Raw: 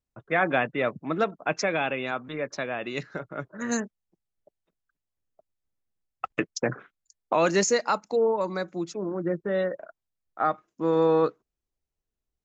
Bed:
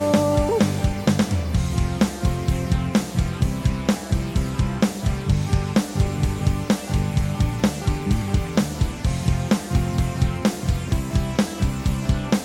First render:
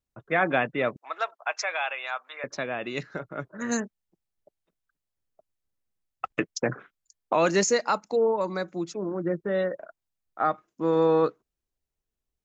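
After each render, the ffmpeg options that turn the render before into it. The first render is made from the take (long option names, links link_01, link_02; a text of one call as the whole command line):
ffmpeg -i in.wav -filter_complex "[0:a]asettb=1/sr,asplit=3[link_01][link_02][link_03];[link_01]atrim=end=0.964[link_04];[link_02]atrim=start=0.96:end=2.44,asetpts=PTS-STARTPTS,afade=type=in:duration=0.004:curve=qsin,afade=type=out:start_time=1.476:duration=0.004:curve=qsin,highpass=frequency=710:width=0.5412,highpass=frequency=710:width=1.3066[link_05];[link_03]atrim=start=2.436[link_06];[link_04][link_05]acrossfade=duration=0.004:curve1=hsin:curve2=qsin[link_07];[link_07][link_06]acrossfade=duration=0.004:curve1=qsin:curve2=hsin" out.wav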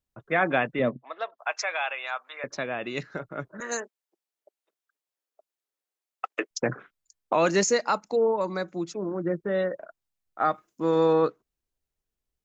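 ffmpeg -i in.wav -filter_complex "[0:a]asettb=1/sr,asplit=3[link_01][link_02][link_03];[link_01]atrim=end=0.794[link_04];[link_02]atrim=start=0.79:end=1.38,asetpts=PTS-STARTPTS,afade=type=in:duration=0.004:curve=qsin,afade=type=out:start_time=0.586:duration=0.004:curve=qsin,highpass=110,equalizer=frequency=130:width_type=q:width=4:gain=9,equalizer=frequency=240:width_type=q:width=4:gain=9,equalizer=frequency=540:width_type=q:width=4:gain=3,equalizer=frequency=840:width_type=q:width=4:gain=-5,equalizer=frequency=1400:width_type=q:width=4:gain=-9,equalizer=frequency=2400:width_type=q:width=4:gain=-9,lowpass=frequency=3900:width=0.5412,lowpass=frequency=3900:width=1.3066[link_05];[link_03]atrim=start=1.376[link_06];[link_04][link_05]acrossfade=duration=0.004:curve1=hsin:curve2=qsin[link_07];[link_07][link_06]acrossfade=duration=0.004:curve1=qsin:curve2=hsin,asettb=1/sr,asplit=3[link_08][link_09][link_10];[link_08]atrim=end=3.604[link_11];[link_09]atrim=start=3.6:end=6.51,asetpts=PTS-STARTPTS,afade=type=in:duration=0.004:curve=qsin,afade=type=out:start_time=2.906:duration=0.004:curve=qsin,highpass=frequency=360:width=0.5412,highpass=frequency=360:width=1.3066[link_12];[link_10]atrim=start=6.506[link_13];[link_11][link_12]acrossfade=duration=0.004:curve1=hsin:curve2=qsin[link_14];[link_14][link_13]acrossfade=duration=0.004:curve1=qsin:curve2=hsin,asettb=1/sr,asplit=3[link_15][link_16][link_17];[link_15]atrim=end=10.414[link_18];[link_16]atrim=start=10.41:end=11.13,asetpts=PTS-STARTPTS,afade=type=in:duration=0.004:curve=qsin,afade=type=out:start_time=0.716:duration=0.004:curve=qsin,highshelf=frequency=4200:gain=9[link_19];[link_17]atrim=start=11.126[link_20];[link_18][link_19]acrossfade=duration=0.004:curve1=hsin:curve2=qsin[link_21];[link_21][link_20]acrossfade=duration=0.004:curve1=qsin:curve2=hsin" out.wav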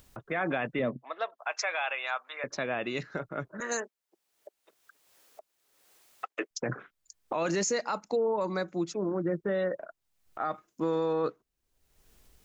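ffmpeg -i in.wav -af "alimiter=limit=-21dB:level=0:latency=1:release=36,acompressor=mode=upward:threshold=-39dB:ratio=2.5" out.wav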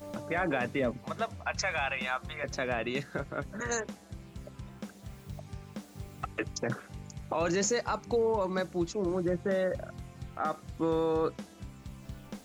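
ffmpeg -i in.wav -i bed.wav -filter_complex "[1:a]volume=-23dB[link_01];[0:a][link_01]amix=inputs=2:normalize=0" out.wav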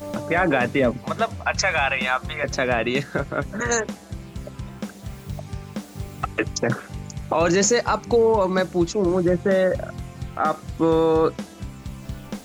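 ffmpeg -i in.wav -af "volume=10.5dB" out.wav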